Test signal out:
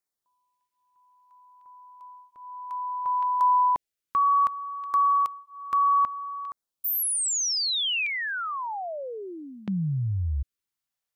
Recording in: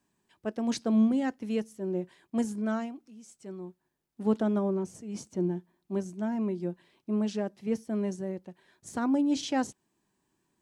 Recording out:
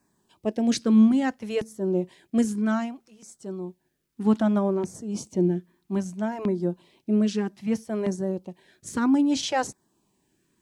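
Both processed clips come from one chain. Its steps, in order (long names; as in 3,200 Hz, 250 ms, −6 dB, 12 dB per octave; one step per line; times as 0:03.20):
auto-filter notch saw down 0.62 Hz 210–3,300 Hz
level +7 dB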